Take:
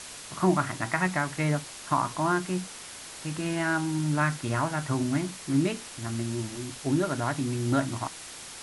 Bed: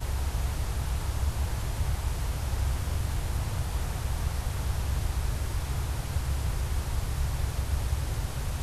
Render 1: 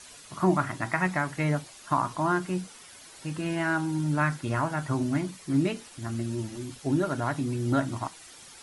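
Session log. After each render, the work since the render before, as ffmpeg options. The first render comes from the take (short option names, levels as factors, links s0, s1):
-af "afftdn=nr=10:nf=-43"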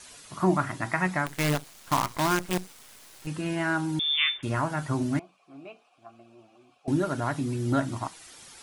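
-filter_complex "[0:a]asettb=1/sr,asplit=3[s0][s1][s2];[s0]atrim=end=1.264[s3];[s1]atrim=start=1.26:end=3.27,asetpts=PTS-STARTPTS,afade=t=in:d=0.004:c=qsin,afade=t=out:st=2.006:d=0.004:c=qsin,acrusher=bits=5:dc=4:mix=0:aa=0.000001[s4];[s2]atrim=start=3.266[s5];[s3][s4]acrossfade=d=0.004:c1=hsin:c2=qsin[s6];[s6][s5]acrossfade=d=0.004:c1=qsin:c2=hsin,asettb=1/sr,asplit=3[s7][s8][s9];[s7]atrim=end=3.994[s10];[s8]atrim=start=3.99:end=4.43,asetpts=PTS-STARTPTS,afade=t=in:d=0.004:c=qsin,afade=t=out:st=0.436:d=0.004:c=qsin,lowpass=f=3100:t=q:w=0.5098,lowpass=f=3100:t=q:w=0.6013,lowpass=f=3100:t=q:w=0.9,lowpass=f=3100:t=q:w=2.563,afreqshift=-3700[s11];[s9]atrim=start=4.426[s12];[s10][s11]acrossfade=d=0.004:c1=hsin:c2=qsin[s13];[s13][s12]acrossfade=d=0.004:c1=qsin:c2=hsin,asettb=1/sr,asplit=3[s14][s15][s16];[s14]atrim=end=5.194[s17];[s15]atrim=start=5.19:end=6.88,asetpts=PTS-STARTPTS,afade=t=in:d=0.004:c=qsin,afade=t=out:st=1.686:d=0.004:c=qsin,asplit=3[s18][s19][s20];[s18]bandpass=f=730:t=q:w=8,volume=1[s21];[s19]bandpass=f=1090:t=q:w=8,volume=0.501[s22];[s20]bandpass=f=2440:t=q:w=8,volume=0.355[s23];[s21][s22][s23]amix=inputs=3:normalize=0[s24];[s16]atrim=start=6.876[s25];[s17][s24]acrossfade=d=0.004:c1=hsin:c2=qsin[s26];[s26][s25]acrossfade=d=0.004:c1=qsin:c2=hsin"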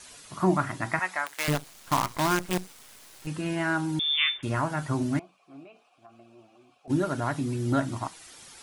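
-filter_complex "[0:a]asettb=1/sr,asplit=3[s0][s1][s2];[s0]atrim=end=0.994[s3];[s1]atrim=start=0.99:end=1.48,asetpts=PTS-STARTPTS,afade=t=in:d=0.004:c=qsin,afade=t=out:st=0.486:d=0.004:c=qsin,highpass=720[s4];[s2]atrim=start=1.476[s5];[s3][s4]acrossfade=d=0.004:c1=hsin:c2=qsin[s6];[s6][s5]acrossfade=d=0.004:c1=qsin:c2=hsin,asplit=3[s7][s8][s9];[s7]afade=t=out:st=5.63:d=0.02[s10];[s8]acompressor=threshold=0.00501:ratio=5:attack=3.2:release=140:knee=1:detection=peak,afade=t=in:st=5.63:d=0.02,afade=t=out:st=6.89:d=0.02[s11];[s9]afade=t=in:st=6.89:d=0.02[s12];[s10][s11][s12]amix=inputs=3:normalize=0"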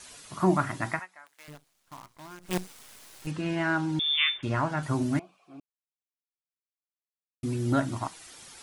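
-filter_complex "[0:a]asettb=1/sr,asplit=3[s0][s1][s2];[s0]atrim=end=3.314[s3];[s1]atrim=start=3.31:end=4.83,asetpts=PTS-STARTPTS,afade=t=in:d=0.004:c=qsin,afade=t=out:st=1.516:d=0.004:c=qsin,lowpass=5900[s4];[s2]atrim=start=4.826[s5];[s3][s4]acrossfade=d=0.004:c1=hsin:c2=qsin[s6];[s6][s5]acrossfade=d=0.004:c1=qsin:c2=hsin,asplit=5[s7][s8][s9][s10][s11];[s7]atrim=end=1.06,asetpts=PTS-STARTPTS,afade=t=out:st=0.89:d=0.17:silence=0.0891251[s12];[s8]atrim=start=1.06:end=2.41,asetpts=PTS-STARTPTS,volume=0.0891[s13];[s9]atrim=start=2.41:end=5.6,asetpts=PTS-STARTPTS,afade=t=in:d=0.17:silence=0.0891251,afade=t=out:st=3.186:d=0.004:c=hsin[s14];[s10]atrim=start=5.6:end=7.43,asetpts=PTS-STARTPTS,volume=0[s15];[s11]atrim=start=7.43,asetpts=PTS-STARTPTS,afade=t=in:d=0.004:c=hsin[s16];[s12][s13][s14][s15][s16]concat=n=5:v=0:a=1"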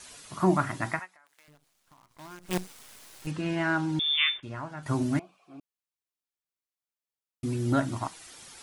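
-filter_complex "[0:a]asettb=1/sr,asplit=3[s0][s1][s2];[s0]atrim=end=1.154[s3];[s1]atrim=start=1.15:end=2.11,asetpts=PTS-STARTPTS,afade=t=in:d=0.004:c=qsin,afade=t=out:st=0.956:d=0.004:c=qsin,acompressor=threshold=0.00158:ratio=4:attack=3.2:release=140:knee=1:detection=peak[s4];[s2]atrim=start=2.106[s5];[s3][s4]acrossfade=d=0.004:c1=hsin:c2=qsin[s6];[s6][s5]acrossfade=d=0.004:c1=qsin:c2=hsin,asplit=3[s7][s8][s9];[s7]atrim=end=4.402[s10];[s8]atrim=start=4.398:end=4.862,asetpts=PTS-STARTPTS,volume=0.316[s11];[s9]atrim=start=4.858[s12];[s10][s11]acrossfade=d=0.004:c1=hsin:c2=hsin[s13];[s13][s12]acrossfade=d=0.004:c1=hsin:c2=hsin"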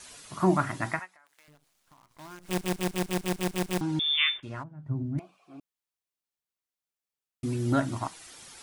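-filter_complex "[0:a]asplit=3[s0][s1][s2];[s0]afade=t=out:st=4.62:d=0.02[s3];[s1]bandpass=f=130:t=q:w=1.3,afade=t=in:st=4.62:d=0.02,afade=t=out:st=5.18:d=0.02[s4];[s2]afade=t=in:st=5.18:d=0.02[s5];[s3][s4][s5]amix=inputs=3:normalize=0,asplit=10[s6][s7][s8][s9][s10][s11][s12][s13][s14][s15];[s6]atrim=end=2.612[s16];[s7]atrim=start=2.458:end=2.612[s17];[s8]atrim=start=2.458:end=2.612[s18];[s9]atrim=start=2.458:end=2.612[s19];[s10]atrim=start=2.458:end=2.612[s20];[s11]atrim=start=2.458:end=2.612[s21];[s12]atrim=start=2.458:end=2.612[s22];[s13]atrim=start=2.458:end=2.612[s23];[s14]atrim=start=2.458:end=2.612[s24];[s15]atrim=start=3.808[s25];[s16][s17]acrossfade=d=0.004:c1=hsin:c2=hsin[s26];[s26][s18]acrossfade=d=0.004:c1=hsin:c2=hsin[s27];[s27][s19]acrossfade=d=0.004:c1=hsin:c2=hsin[s28];[s28][s20]acrossfade=d=0.004:c1=hsin:c2=hsin[s29];[s29][s21]acrossfade=d=0.004:c1=hsin:c2=hsin[s30];[s30][s22]acrossfade=d=0.004:c1=hsin:c2=hsin[s31];[s31][s23]acrossfade=d=0.004:c1=hsin:c2=hsin[s32];[s32][s24]acrossfade=d=0.004:c1=hsin:c2=hsin[s33];[s33][s25]acrossfade=d=0.004:c1=hsin:c2=hsin"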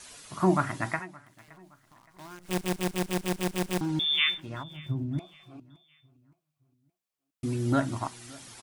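-af "aecho=1:1:569|1138|1707:0.0668|0.0274|0.0112"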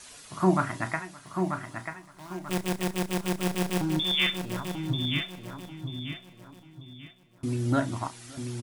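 -filter_complex "[0:a]asplit=2[s0][s1];[s1]adelay=32,volume=0.251[s2];[s0][s2]amix=inputs=2:normalize=0,aecho=1:1:939|1878|2817|3756:0.501|0.16|0.0513|0.0164"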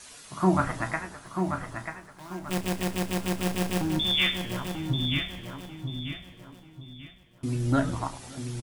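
-filter_complex "[0:a]asplit=2[s0][s1];[s1]adelay=15,volume=0.299[s2];[s0][s2]amix=inputs=2:normalize=0,asplit=7[s3][s4][s5][s6][s7][s8][s9];[s4]adelay=103,afreqshift=-100,volume=0.178[s10];[s5]adelay=206,afreqshift=-200,volume=0.104[s11];[s6]adelay=309,afreqshift=-300,volume=0.0596[s12];[s7]adelay=412,afreqshift=-400,volume=0.0347[s13];[s8]adelay=515,afreqshift=-500,volume=0.0202[s14];[s9]adelay=618,afreqshift=-600,volume=0.0116[s15];[s3][s10][s11][s12][s13][s14][s15]amix=inputs=7:normalize=0"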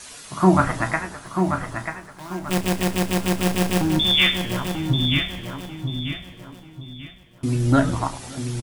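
-af "volume=2.24"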